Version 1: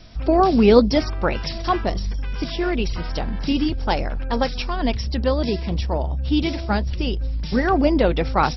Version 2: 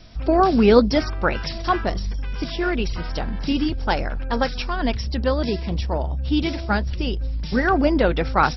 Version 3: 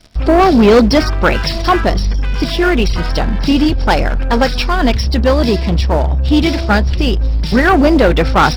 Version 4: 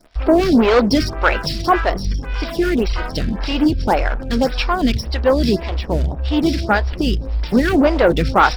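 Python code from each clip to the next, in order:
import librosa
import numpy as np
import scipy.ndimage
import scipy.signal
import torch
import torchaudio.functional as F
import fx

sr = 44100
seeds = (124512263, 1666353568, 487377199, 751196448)

y1 = fx.dynamic_eq(x, sr, hz=1500.0, q=2.4, threshold_db=-40.0, ratio=4.0, max_db=6)
y1 = y1 * librosa.db_to_amplitude(-1.0)
y2 = fx.leveller(y1, sr, passes=3)
y3 = fx.stagger_phaser(y2, sr, hz=1.8)
y3 = y3 * librosa.db_to_amplitude(-1.0)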